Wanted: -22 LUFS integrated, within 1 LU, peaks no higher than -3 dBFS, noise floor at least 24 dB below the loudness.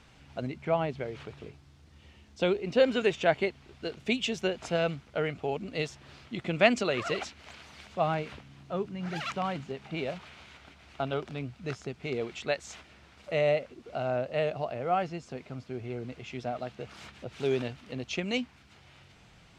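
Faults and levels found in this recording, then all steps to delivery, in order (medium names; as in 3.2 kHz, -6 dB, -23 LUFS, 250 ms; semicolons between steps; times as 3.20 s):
loudness -32.0 LUFS; peak level -8.0 dBFS; loudness target -22.0 LUFS
-> trim +10 dB; peak limiter -3 dBFS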